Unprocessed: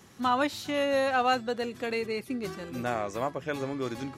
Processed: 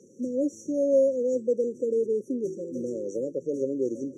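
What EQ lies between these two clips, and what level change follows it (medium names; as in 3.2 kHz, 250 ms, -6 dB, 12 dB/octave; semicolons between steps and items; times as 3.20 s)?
high-pass 320 Hz 12 dB/octave; brick-wall FIR band-stop 570–5600 Hz; distance through air 120 m; +8.5 dB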